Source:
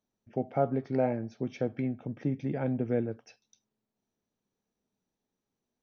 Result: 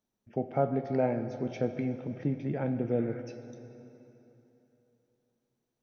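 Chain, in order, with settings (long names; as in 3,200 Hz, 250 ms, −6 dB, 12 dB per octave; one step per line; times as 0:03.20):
0:02.12–0:02.77: high-frequency loss of the air 68 metres
0:02.94–0:03.19: healed spectral selection 940–2,400 Hz before
dense smooth reverb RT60 3.3 s, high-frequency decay 0.85×, DRR 8.5 dB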